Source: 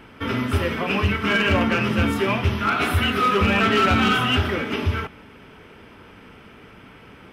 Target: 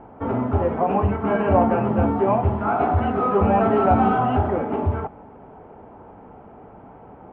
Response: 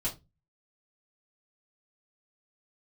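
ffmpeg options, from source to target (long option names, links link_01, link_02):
-af "lowpass=frequency=780:width_type=q:width=4.2"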